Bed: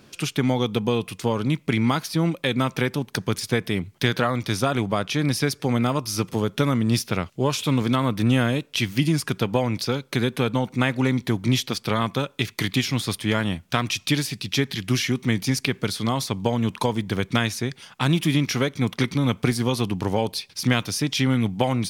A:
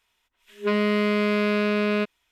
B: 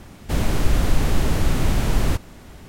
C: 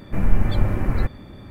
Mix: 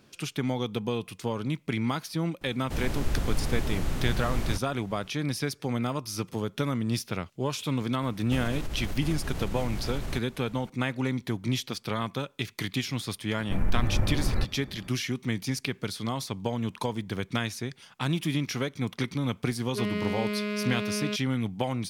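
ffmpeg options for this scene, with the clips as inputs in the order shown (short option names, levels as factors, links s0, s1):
-filter_complex "[2:a]asplit=2[s0][s1];[0:a]volume=0.422[s2];[s1]acompressor=threshold=0.112:ratio=6:attack=3.2:release=140:knee=1:detection=peak[s3];[3:a]acompressor=threshold=0.2:ratio=6:attack=31:release=25:knee=6:detection=peak[s4];[1:a]equalizer=f=810:t=o:w=2:g=-6[s5];[s0]atrim=end=2.68,asetpts=PTS-STARTPTS,volume=0.316,afade=t=in:d=0.004:c=hsin,afade=t=out:st=2.676:d=0.004:c=hsin,adelay=2410[s6];[s3]atrim=end=2.68,asetpts=PTS-STARTPTS,volume=0.355,afade=t=in:d=0.004:c=hsin,afade=t=out:st=2.676:d=0.004:c=hsin,adelay=353682S[s7];[s4]atrim=end=1.5,asetpts=PTS-STARTPTS,volume=0.531,afade=t=in:d=0.004:c=hsin,afade=t=out:st=1.496:d=0.004:c=hsin,adelay=13380[s8];[s5]atrim=end=2.31,asetpts=PTS-STARTPTS,volume=0.473,afade=t=in:d=0.004:c=hsin,afade=t=out:st=2.306:d=0.004:c=hsin,adelay=19110[s9];[s2][s6][s7][s8][s9]amix=inputs=5:normalize=0"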